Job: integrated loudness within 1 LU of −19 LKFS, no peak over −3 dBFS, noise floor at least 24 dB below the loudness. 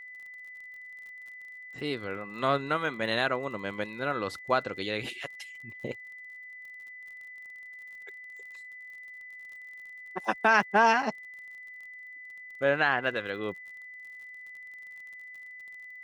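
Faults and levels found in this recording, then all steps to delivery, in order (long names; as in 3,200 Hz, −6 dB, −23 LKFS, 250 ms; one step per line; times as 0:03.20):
crackle rate 40 per second; interfering tone 2,000 Hz; level of the tone −43 dBFS; integrated loudness −29.0 LKFS; sample peak −9.0 dBFS; target loudness −19.0 LKFS
→ click removal
notch filter 2,000 Hz, Q 30
level +10 dB
brickwall limiter −3 dBFS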